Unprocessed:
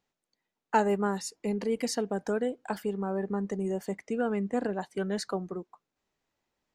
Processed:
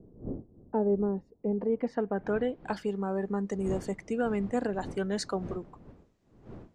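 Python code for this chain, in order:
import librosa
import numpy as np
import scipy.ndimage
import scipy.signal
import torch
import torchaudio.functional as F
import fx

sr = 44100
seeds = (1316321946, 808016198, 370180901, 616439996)

y = fx.dmg_wind(x, sr, seeds[0], corner_hz=300.0, level_db=-46.0)
y = fx.filter_sweep_lowpass(y, sr, from_hz=430.0, to_hz=8400.0, start_s=1.25, end_s=3.07, q=1.1)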